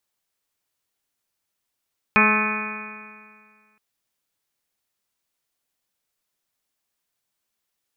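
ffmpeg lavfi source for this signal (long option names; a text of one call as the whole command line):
ffmpeg -f lavfi -i "aevalsrc='0.106*pow(10,-3*t/1.93)*sin(2*PI*212.11*t)+0.0562*pow(10,-3*t/1.93)*sin(2*PI*424.85*t)+0.0282*pow(10,-3*t/1.93)*sin(2*PI*638.86*t)+0.0562*pow(10,-3*t/1.93)*sin(2*PI*854.76*t)+0.0841*pow(10,-3*t/1.93)*sin(2*PI*1073.17*t)+0.1*pow(10,-3*t/1.93)*sin(2*PI*1294.69*t)+0.0531*pow(10,-3*t/1.93)*sin(2*PI*1519.92*t)+0.075*pow(10,-3*t/1.93)*sin(2*PI*1749.43*t)+0.0266*pow(10,-3*t/1.93)*sin(2*PI*1983.77*t)+0.075*pow(10,-3*t/1.93)*sin(2*PI*2223.47*t)+0.168*pow(10,-3*t/1.93)*sin(2*PI*2469.06*t)':duration=1.62:sample_rate=44100" out.wav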